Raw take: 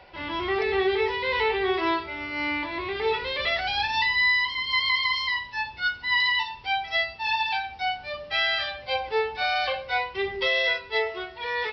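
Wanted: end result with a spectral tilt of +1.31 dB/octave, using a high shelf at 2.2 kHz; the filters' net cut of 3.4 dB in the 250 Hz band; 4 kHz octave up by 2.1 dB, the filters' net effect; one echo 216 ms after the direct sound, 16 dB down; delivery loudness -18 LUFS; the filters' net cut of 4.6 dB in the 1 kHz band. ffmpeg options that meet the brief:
-af "equalizer=f=250:t=o:g=-5.5,equalizer=f=1000:t=o:g=-5,highshelf=f=2200:g=-4.5,equalizer=f=4000:t=o:g=7,aecho=1:1:216:0.158,volume=2.51"

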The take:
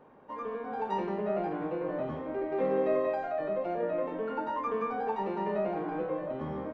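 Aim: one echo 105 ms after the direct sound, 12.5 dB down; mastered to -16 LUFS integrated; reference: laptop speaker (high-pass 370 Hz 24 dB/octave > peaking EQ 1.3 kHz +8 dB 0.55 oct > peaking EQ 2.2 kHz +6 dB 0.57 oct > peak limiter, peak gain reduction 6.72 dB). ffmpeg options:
-af "highpass=f=370:w=0.5412,highpass=f=370:w=1.3066,equalizer=f=1300:t=o:w=0.55:g=8,equalizer=f=2200:t=o:w=0.57:g=6,aecho=1:1:105:0.237,volume=7.08,alimiter=limit=0.473:level=0:latency=1"

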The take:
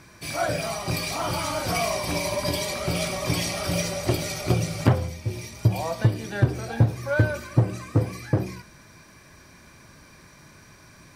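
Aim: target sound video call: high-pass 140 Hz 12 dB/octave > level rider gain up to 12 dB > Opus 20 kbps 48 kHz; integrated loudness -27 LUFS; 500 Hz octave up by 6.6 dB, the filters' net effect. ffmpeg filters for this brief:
-af "highpass=140,equalizer=f=500:t=o:g=8.5,dynaudnorm=m=3.98,volume=0.75" -ar 48000 -c:a libopus -b:a 20k

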